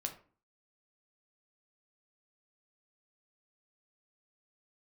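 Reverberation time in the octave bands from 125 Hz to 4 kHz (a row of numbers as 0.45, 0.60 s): 0.55, 0.55, 0.45, 0.40, 0.35, 0.25 s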